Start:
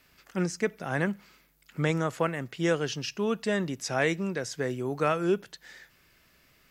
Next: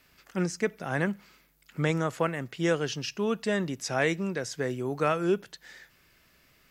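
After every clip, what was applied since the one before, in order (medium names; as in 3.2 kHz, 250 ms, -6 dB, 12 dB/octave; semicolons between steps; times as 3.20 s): no audible change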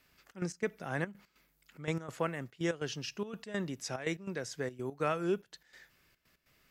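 trance gate "xxx.x.xxxx.x.x" 144 bpm -12 dB; trim -6 dB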